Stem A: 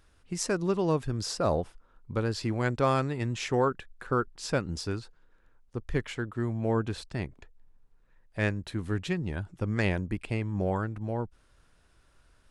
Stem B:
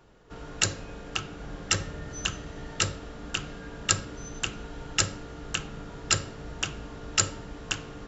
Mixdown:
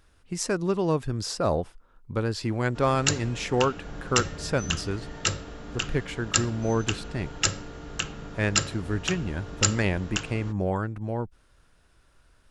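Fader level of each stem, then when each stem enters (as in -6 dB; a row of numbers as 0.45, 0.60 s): +2.0, +0.5 dB; 0.00, 2.45 s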